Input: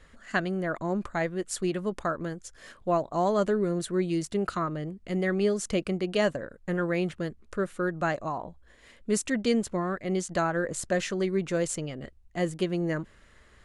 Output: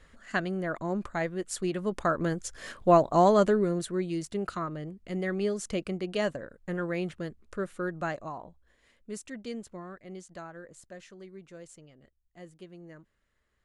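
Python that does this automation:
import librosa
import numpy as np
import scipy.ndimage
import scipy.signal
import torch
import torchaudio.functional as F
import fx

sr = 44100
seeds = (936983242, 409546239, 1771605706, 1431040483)

y = fx.gain(x, sr, db=fx.line((1.72, -2.0), (2.36, 6.0), (3.15, 6.0), (4.04, -4.0), (7.96, -4.0), (9.19, -13.0), (9.84, -13.0), (10.96, -19.5)))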